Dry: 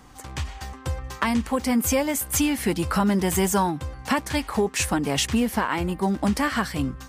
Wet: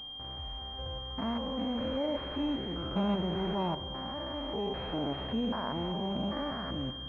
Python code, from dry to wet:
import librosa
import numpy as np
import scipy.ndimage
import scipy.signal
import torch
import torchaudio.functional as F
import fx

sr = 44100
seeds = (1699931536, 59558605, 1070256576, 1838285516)

y = fx.spec_steps(x, sr, hold_ms=200)
y = fx.peak_eq(y, sr, hz=620.0, db=8.0, octaves=0.49)
y = fx.rev_gated(y, sr, seeds[0], gate_ms=460, shape='flat', drr_db=11.5)
y = fx.pwm(y, sr, carrier_hz=3200.0)
y = y * librosa.db_to_amplitude(-8.0)